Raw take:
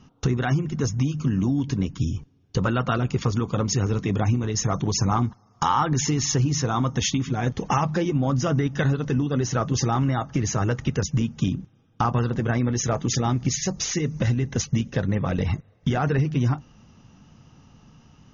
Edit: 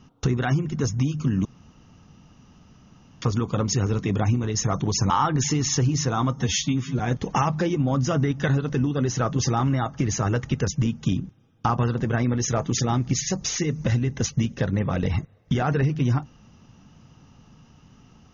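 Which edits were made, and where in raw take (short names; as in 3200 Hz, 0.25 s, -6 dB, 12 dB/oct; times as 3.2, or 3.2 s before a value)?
1.45–3.22 room tone
5.1–5.67 cut
6.92–7.35 stretch 1.5×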